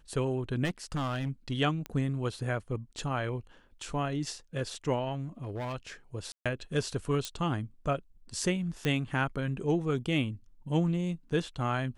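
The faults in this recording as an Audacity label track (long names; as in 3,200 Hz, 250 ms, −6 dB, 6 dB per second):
0.640000	1.290000	clipping −28 dBFS
1.860000	1.860000	click −22 dBFS
5.430000	5.750000	clipping −32 dBFS
6.320000	6.460000	drop-out 136 ms
7.250000	7.250000	click −19 dBFS
8.850000	8.850000	click −17 dBFS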